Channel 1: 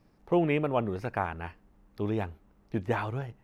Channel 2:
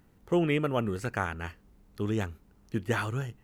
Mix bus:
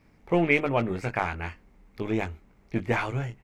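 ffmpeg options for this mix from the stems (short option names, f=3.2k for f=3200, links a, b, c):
-filter_complex "[0:a]equalizer=f=2.2k:t=o:w=0.38:g=13,volume=1.5dB[a];[1:a]lowpass=f=8.2k:w=0.5412,lowpass=f=8.2k:w=1.3066,aeval=exprs='(tanh(20*val(0)+0.4)-tanh(0.4))/20':c=same,volume=-1,adelay=19,volume=-1dB[b];[a][b]amix=inputs=2:normalize=0"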